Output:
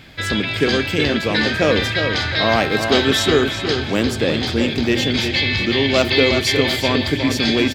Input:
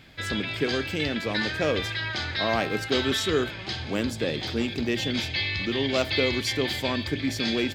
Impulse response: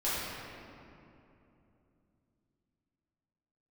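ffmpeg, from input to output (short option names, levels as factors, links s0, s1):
-filter_complex "[0:a]asplit=2[s0][s1];[s1]adelay=361,lowpass=f=4400:p=1,volume=0.473,asplit=2[s2][s3];[s3]adelay=361,lowpass=f=4400:p=1,volume=0.41,asplit=2[s4][s5];[s5]adelay=361,lowpass=f=4400:p=1,volume=0.41,asplit=2[s6][s7];[s7]adelay=361,lowpass=f=4400:p=1,volume=0.41,asplit=2[s8][s9];[s9]adelay=361,lowpass=f=4400:p=1,volume=0.41[s10];[s0][s2][s4][s6][s8][s10]amix=inputs=6:normalize=0,volume=2.66"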